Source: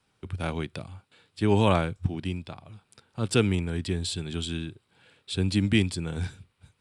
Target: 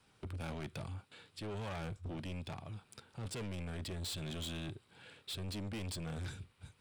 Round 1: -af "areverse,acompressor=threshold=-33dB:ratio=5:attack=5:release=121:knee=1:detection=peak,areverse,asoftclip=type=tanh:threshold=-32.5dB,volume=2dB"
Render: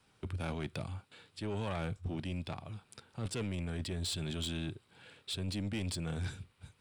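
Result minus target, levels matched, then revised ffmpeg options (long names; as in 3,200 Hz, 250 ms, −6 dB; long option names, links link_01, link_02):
soft clipping: distortion −7 dB
-af "areverse,acompressor=threshold=-33dB:ratio=5:attack=5:release=121:knee=1:detection=peak,areverse,asoftclip=type=tanh:threshold=-40.5dB,volume=2dB"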